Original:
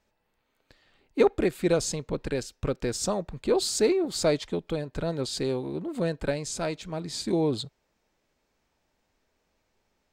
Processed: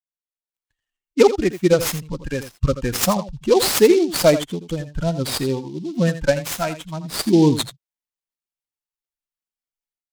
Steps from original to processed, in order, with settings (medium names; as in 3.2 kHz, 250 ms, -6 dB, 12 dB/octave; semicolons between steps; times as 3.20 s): expander on every frequency bin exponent 2; level rider gain up to 15.5 dB; on a send: delay 83 ms -12.5 dB; on the sum: delay time shaken by noise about 4.1 kHz, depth 0.032 ms